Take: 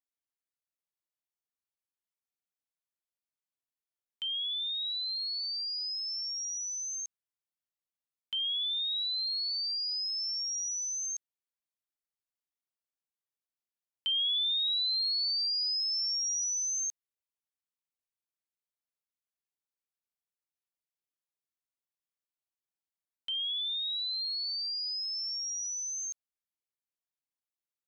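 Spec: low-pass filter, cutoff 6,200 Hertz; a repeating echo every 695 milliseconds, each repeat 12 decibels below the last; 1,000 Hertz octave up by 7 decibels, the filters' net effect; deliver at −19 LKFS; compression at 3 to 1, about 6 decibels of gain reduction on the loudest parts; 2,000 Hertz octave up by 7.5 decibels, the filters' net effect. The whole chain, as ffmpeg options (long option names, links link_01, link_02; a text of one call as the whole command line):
ffmpeg -i in.wav -af "lowpass=6200,equalizer=frequency=1000:width_type=o:gain=6,equalizer=frequency=2000:width_type=o:gain=9,acompressor=threshold=-34dB:ratio=3,aecho=1:1:695|1390|2085:0.251|0.0628|0.0157,volume=13.5dB" out.wav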